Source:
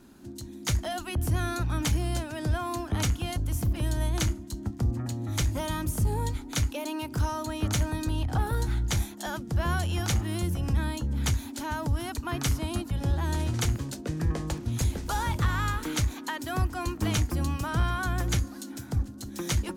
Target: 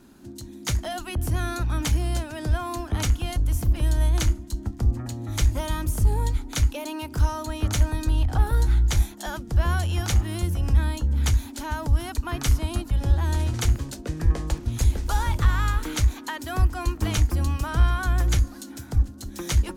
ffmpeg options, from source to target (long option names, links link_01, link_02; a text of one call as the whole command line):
ffmpeg -i in.wav -af "asubboost=boost=5:cutoff=58,volume=1.5dB" out.wav